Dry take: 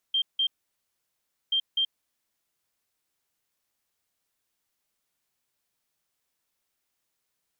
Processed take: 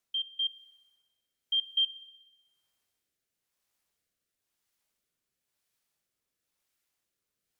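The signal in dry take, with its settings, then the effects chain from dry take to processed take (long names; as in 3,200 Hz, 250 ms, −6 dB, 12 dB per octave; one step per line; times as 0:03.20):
beeps in groups sine 3,170 Hz, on 0.08 s, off 0.17 s, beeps 2, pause 1.05 s, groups 2, −21.5 dBFS
rotating-speaker cabinet horn 1 Hz
spring reverb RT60 1.2 s, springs 42 ms, DRR 13.5 dB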